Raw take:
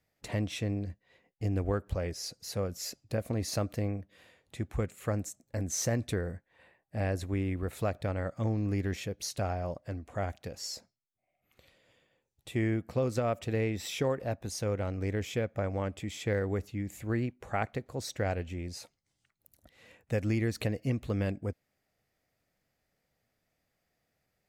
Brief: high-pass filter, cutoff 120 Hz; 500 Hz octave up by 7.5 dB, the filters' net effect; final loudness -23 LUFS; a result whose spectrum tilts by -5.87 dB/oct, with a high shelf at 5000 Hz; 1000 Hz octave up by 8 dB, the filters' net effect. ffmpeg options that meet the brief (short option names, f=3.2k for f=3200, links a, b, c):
-af "highpass=120,equalizer=f=500:t=o:g=6.5,equalizer=f=1k:t=o:g=9,highshelf=f=5k:g=-5.5,volume=7dB"